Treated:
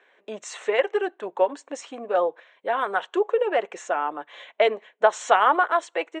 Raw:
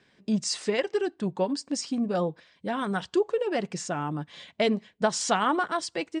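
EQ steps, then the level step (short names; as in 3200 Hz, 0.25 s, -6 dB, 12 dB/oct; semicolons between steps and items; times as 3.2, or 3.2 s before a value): running mean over 9 samples; HPF 460 Hz 24 dB/oct; +8.0 dB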